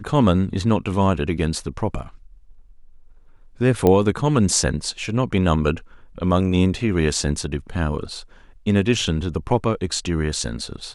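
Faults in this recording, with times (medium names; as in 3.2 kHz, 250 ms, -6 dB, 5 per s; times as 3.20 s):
3.87 s: pop -6 dBFS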